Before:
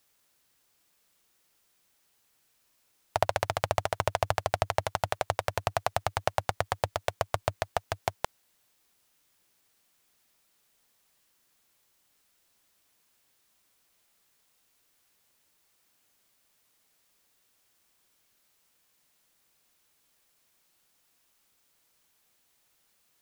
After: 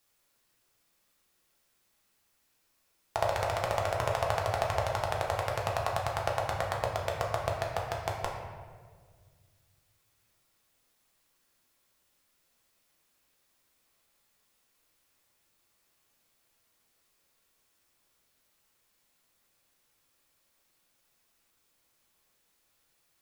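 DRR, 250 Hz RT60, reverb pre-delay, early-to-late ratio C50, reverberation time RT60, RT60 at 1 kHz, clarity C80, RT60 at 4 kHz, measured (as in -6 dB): -2.0 dB, 2.3 s, 3 ms, 3.0 dB, 1.7 s, 1.5 s, 4.5 dB, 0.95 s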